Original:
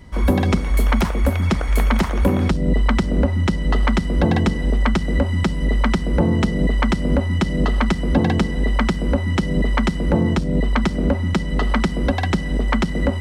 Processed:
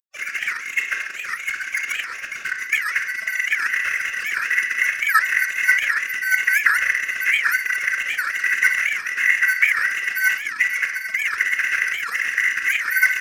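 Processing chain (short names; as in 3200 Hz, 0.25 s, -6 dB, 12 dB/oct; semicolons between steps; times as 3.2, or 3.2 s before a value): sine-wave speech; FFT band-pass 1400–2800 Hz; in parallel at +2.5 dB: compressor 20:1, threshold -26 dBFS, peak gain reduction 18 dB; on the sum: crossover distortion -30.5 dBFS; formant-preserving pitch shift -4.5 st; echo 0.137 s -13.5 dB; reverb RT60 0.55 s, pre-delay 28 ms, DRR 4.5 dB; record warp 78 rpm, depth 250 cents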